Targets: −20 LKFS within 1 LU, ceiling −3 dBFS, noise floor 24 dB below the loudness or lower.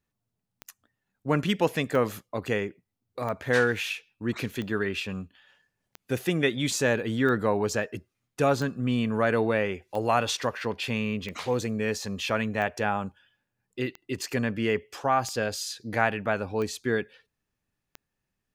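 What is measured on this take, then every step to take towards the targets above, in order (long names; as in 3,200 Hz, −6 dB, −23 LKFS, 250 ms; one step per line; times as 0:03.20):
number of clicks 14; integrated loudness −28.0 LKFS; sample peak −7.5 dBFS; target loudness −20.0 LKFS
→ click removal
level +8 dB
brickwall limiter −3 dBFS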